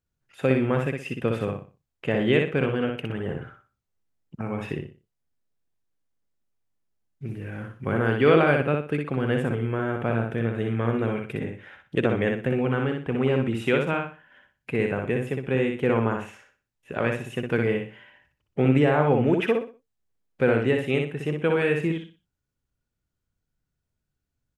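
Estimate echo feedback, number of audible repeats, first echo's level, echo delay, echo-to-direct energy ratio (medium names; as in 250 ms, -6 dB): 29%, 3, -4.0 dB, 61 ms, -3.5 dB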